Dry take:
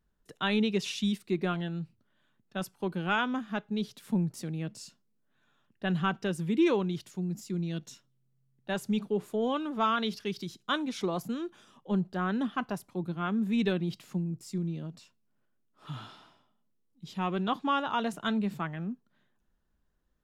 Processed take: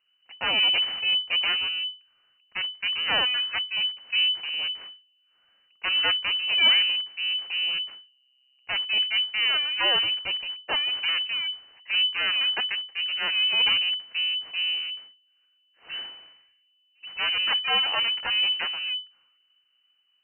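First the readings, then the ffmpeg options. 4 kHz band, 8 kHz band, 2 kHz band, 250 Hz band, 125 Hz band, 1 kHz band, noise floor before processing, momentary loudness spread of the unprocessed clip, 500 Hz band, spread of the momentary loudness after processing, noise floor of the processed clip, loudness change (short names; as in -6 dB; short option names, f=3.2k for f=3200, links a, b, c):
+21.5 dB, under -30 dB, +11.5 dB, -21.5 dB, under -20 dB, -2.5 dB, -73 dBFS, 12 LU, -8.5 dB, 11 LU, -68 dBFS, +8.5 dB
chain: -af "aeval=exprs='abs(val(0))':c=same,lowpass=f=2.6k:t=q:w=0.5098,lowpass=f=2.6k:t=q:w=0.6013,lowpass=f=2.6k:t=q:w=0.9,lowpass=f=2.6k:t=q:w=2.563,afreqshift=-3000,volume=5.5dB"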